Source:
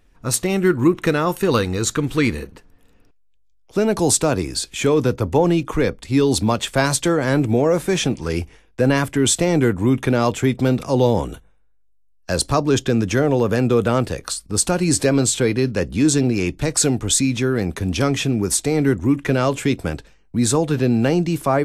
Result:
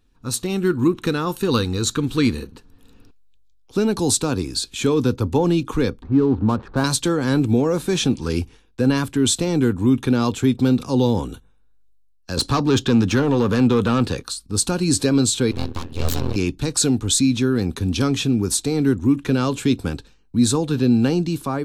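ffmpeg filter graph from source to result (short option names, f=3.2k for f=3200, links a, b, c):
-filter_complex "[0:a]asettb=1/sr,asplit=3[a][b][c];[a]atrim=end=6.024[d];[b]atrim=start=6.02:end=6.84,asetpts=PTS-STARTPTS,afade=t=in:d=0.004:c=qsin,afade=t=out:st=0.816:d=0.004:c=qsin,aeval=exprs='val(0)+0.5*0.0299*sgn(val(0))':c=same,lowpass=f=1.6k:w=0.5412,lowpass=f=1.6k:w=1.3066,adynamicsmooth=sensitivity=5.5:basefreq=860[e];[c]atrim=start=6.836[f];[d][e]acrossfade=d=0.004:c1=hsin:c2=qsin[g];[g][f]acrossfade=d=0.004:c1=qsin:c2=hsin,asettb=1/sr,asplit=3[h][i][j];[h]atrim=end=12.374[k];[i]atrim=start=12.37:end=14.23,asetpts=PTS-STARTPTS,afade=t=in:d=0.004:c=qsin,afade=t=out:st=1.856:d=0.004:c=qsin,bass=f=250:g=9,treble=f=4k:g=2,asplit=2[l][m];[m]highpass=f=720:p=1,volume=19dB,asoftclip=type=tanh:threshold=-1.5dB[n];[l][n]amix=inputs=2:normalize=0,lowpass=f=2.6k:p=1,volume=-6dB[o];[j]atrim=start=14.226[p];[k][o]acrossfade=d=0.004:c1=hsin:c2=qsin[q];[q][p]acrossfade=d=0.004:c1=qsin:c2=hsin,asettb=1/sr,asplit=3[r][s][t];[r]atrim=end=15.514[u];[s]atrim=start=15.51:end=16.36,asetpts=PTS-STARTPTS,afade=t=in:d=0.004:c=qsin,afade=t=out:st=0.846:d=0.004:c=qsin,bandreject=f=93.31:t=h:w=4,bandreject=f=186.62:t=h:w=4,bandreject=f=279.93:t=h:w=4,bandreject=f=373.24:t=h:w=4,bandreject=f=466.55:t=h:w=4,bandreject=f=559.86:t=h:w=4,bandreject=f=653.17:t=h:w=4,bandreject=f=746.48:t=h:w=4,bandreject=f=839.79:t=h:w=4,bandreject=f=933.1:t=h:w=4,bandreject=f=1.02641k:t=h:w=4,bandreject=f=1.11972k:t=h:w=4,bandreject=f=1.21303k:t=h:w=4,bandreject=f=1.30634k:t=h:w=4,bandreject=f=1.39965k:t=h:w=4,bandreject=f=1.49296k:t=h:w=4,bandreject=f=1.58627k:t=h:w=4,bandreject=f=1.67958k:t=h:w=4,bandreject=f=1.77289k:t=h:w=4,bandreject=f=1.8662k:t=h:w=4,bandreject=f=1.95951k:t=h:w=4,bandreject=f=2.05282k:t=h:w=4,bandreject=f=2.14613k:t=h:w=4,bandreject=f=2.23944k:t=h:w=4,bandreject=f=2.33275k:t=h:w=4,bandreject=f=2.42606k:t=h:w=4,bandreject=f=2.51937k:t=h:w=4,bandreject=f=2.61268k:t=h:w=4,bandreject=f=2.70599k:t=h:w=4,bandreject=f=2.7993k:t=h:w=4,bandreject=f=2.89261k:t=h:w=4,bandreject=f=2.98592k:t=h:w=4,bandreject=f=3.07923k:t=h:w=4,bandreject=f=3.17254k:t=h:w=4,bandreject=f=3.26585k:t=h:w=4,bandreject=f=3.35916k:t=h:w=4,bandreject=f=3.45247k:t=h:w=4,bandreject=f=3.54578k:t=h:w=4,aeval=exprs='abs(val(0))':c=same,tremolo=f=83:d=0.919[v];[t]atrim=start=16.356[w];[u][v]acrossfade=d=0.004:c1=hsin:c2=qsin[x];[x][w]acrossfade=d=0.004:c1=qsin:c2=hsin,equalizer=f=100:t=o:w=0.33:g=4,equalizer=f=250:t=o:w=0.33:g=6,equalizer=f=630:t=o:w=0.33:g=-11,equalizer=f=2k:t=o:w=0.33:g=-9,equalizer=f=4k:t=o:w=0.33:g=7,dynaudnorm=f=120:g=7:m=11.5dB,volume=-6dB"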